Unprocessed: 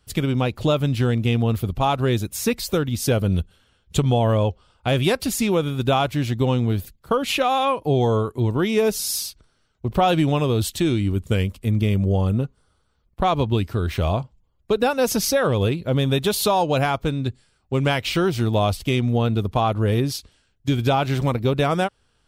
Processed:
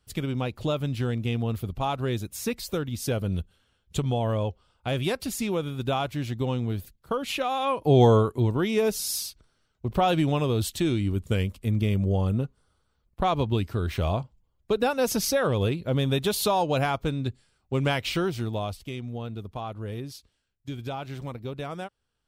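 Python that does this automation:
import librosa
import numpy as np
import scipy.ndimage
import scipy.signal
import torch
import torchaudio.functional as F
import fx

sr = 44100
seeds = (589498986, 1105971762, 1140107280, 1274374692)

y = fx.gain(x, sr, db=fx.line((7.59, -7.5), (8.02, 3.0), (8.61, -4.5), (18.08, -4.5), (18.93, -14.5)))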